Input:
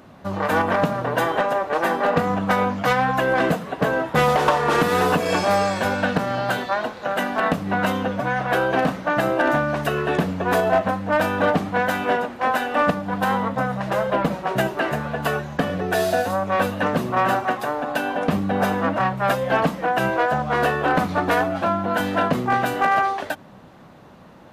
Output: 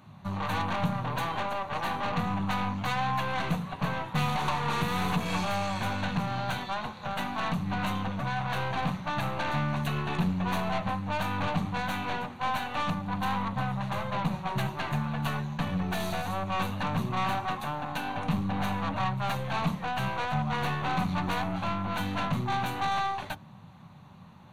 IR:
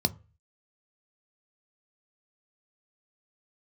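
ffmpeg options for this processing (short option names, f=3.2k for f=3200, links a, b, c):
-filter_complex "[0:a]aeval=exprs='(tanh(11.2*val(0)+0.6)-tanh(0.6))/11.2':c=same,asplit=2[a][b];[1:a]atrim=start_sample=2205[c];[b][c]afir=irnorm=-1:irlink=0,volume=-12.5dB[d];[a][d]amix=inputs=2:normalize=0,volume=-4.5dB"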